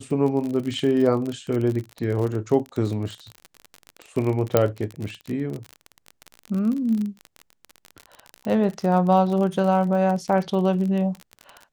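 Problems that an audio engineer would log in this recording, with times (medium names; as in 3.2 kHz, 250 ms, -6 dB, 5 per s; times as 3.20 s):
crackle 37 per s -27 dBFS
4.57 s: pop -4 dBFS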